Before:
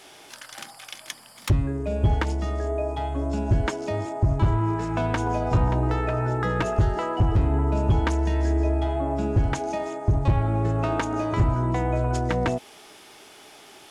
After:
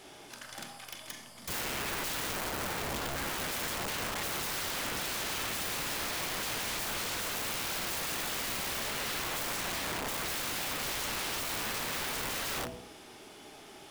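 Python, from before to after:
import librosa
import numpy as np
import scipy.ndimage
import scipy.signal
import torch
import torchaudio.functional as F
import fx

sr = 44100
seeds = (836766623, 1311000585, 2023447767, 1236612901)

p1 = fx.rattle_buzz(x, sr, strikes_db=-21.0, level_db=-18.0)
p2 = fx.band_shelf(p1, sr, hz=830.0, db=-11.0, octaves=1.7, at=(2.35, 3.28))
p3 = fx.mod_noise(p2, sr, seeds[0], snr_db=22)
p4 = fx.low_shelf(p3, sr, hz=430.0, db=8.0)
p5 = p4 + fx.echo_single(p4, sr, ms=102, db=-21.0, dry=0)
p6 = fx.rev_schroeder(p5, sr, rt60_s=0.69, comb_ms=29, drr_db=6.5)
p7 = (np.mod(10.0 ** (25.0 / 20.0) * p6 + 1.0, 2.0) - 1.0) / 10.0 ** (25.0 / 20.0)
y = F.gain(torch.from_numpy(p7), -5.5).numpy()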